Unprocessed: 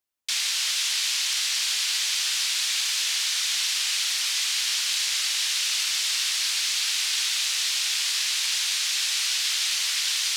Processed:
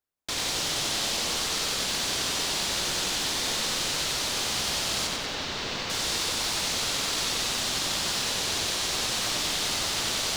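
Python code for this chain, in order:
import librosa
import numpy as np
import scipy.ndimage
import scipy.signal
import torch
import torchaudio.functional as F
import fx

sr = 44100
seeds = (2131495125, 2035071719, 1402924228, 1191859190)

p1 = fx.sample_hold(x, sr, seeds[0], rate_hz=3200.0, jitter_pct=0)
p2 = x + F.gain(torch.from_numpy(p1), -6.0).numpy()
p3 = fx.air_absorb(p2, sr, metres=140.0, at=(5.07, 5.9))
p4 = fx.echo_crushed(p3, sr, ms=93, feedback_pct=55, bits=8, wet_db=-4.0)
y = F.gain(torch.from_numpy(p4), -5.5).numpy()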